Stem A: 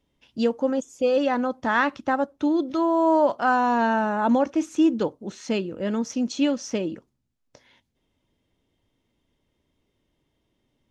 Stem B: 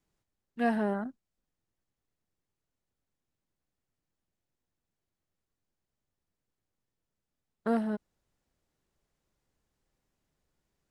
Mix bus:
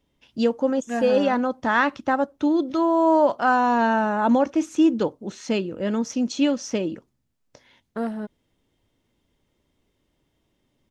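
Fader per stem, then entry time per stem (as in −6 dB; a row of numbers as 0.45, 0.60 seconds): +1.5, +1.0 decibels; 0.00, 0.30 seconds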